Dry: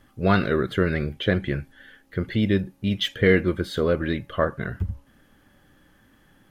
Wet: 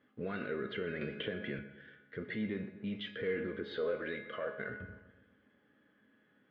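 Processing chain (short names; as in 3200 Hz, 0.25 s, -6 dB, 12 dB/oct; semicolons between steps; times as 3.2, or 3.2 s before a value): 3.72–4.69 resonant low shelf 410 Hz -7 dB, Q 1.5; sample leveller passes 1; limiter -20.5 dBFS, peak gain reduction 14 dB; speaker cabinet 150–3500 Hz, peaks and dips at 260 Hz +6 dB, 470 Hz +9 dB, 840 Hz -4 dB, 1500 Hz +4 dB, 2100 Hz +4 dB; resonator 210 Hz, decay 0.67 s, harmonics all, mix 80%; dark delay 0.125 s, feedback 52%, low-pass 2000 Hz, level -12.5 dB; 1.01–1.59 three-band squash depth 100%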